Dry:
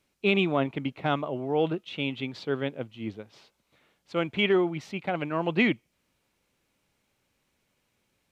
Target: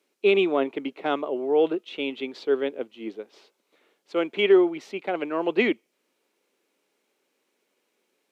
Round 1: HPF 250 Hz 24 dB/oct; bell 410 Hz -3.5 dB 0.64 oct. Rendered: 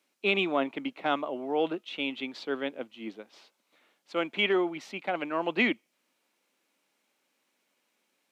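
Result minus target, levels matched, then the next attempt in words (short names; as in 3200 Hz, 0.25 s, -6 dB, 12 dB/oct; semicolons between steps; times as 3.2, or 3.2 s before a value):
500 Hz band -3.5 dB
HPF 250 Hz 24 dB/oct; bell 410 Hz +8 dB 0.64 oct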